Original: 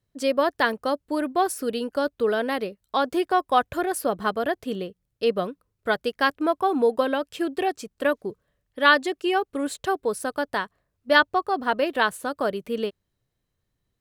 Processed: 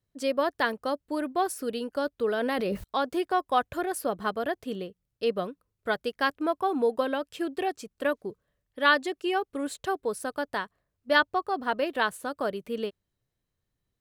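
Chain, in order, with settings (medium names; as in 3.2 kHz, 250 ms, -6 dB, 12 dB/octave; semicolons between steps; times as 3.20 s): 2.38–2.84 s: level flattener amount 100%; trim -4.5 dB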